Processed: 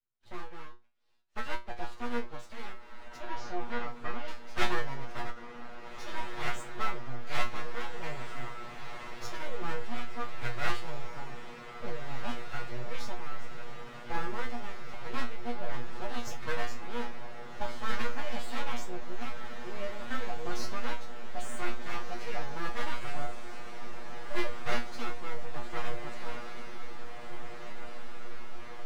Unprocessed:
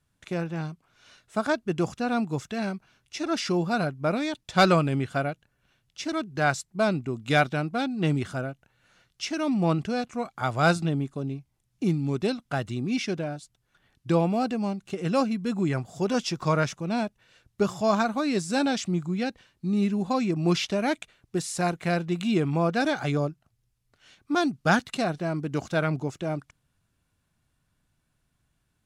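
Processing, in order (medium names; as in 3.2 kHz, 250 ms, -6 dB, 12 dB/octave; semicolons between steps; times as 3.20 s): knee-point frequency compression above 1.2 kHz 1.5:1; level-controlled noise filter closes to 2.4 kHz, open at -20.5 dBFS; gate -53 dBFS, range -13 dB; peaking EQ 160 Hz -7.5 dB 1.6 oct; full-wave rectifier; 3.16–4.28 s: distance through air 140 m; feedback comb 120 Hz, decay 0.23 s, harmonics all, mix 100%; on a send: echo that smears into a reverb 1690 ms, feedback 74%, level -9 dB; on the sum: endings held to a fixed fall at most 240 dB/s; trim +3.5 dB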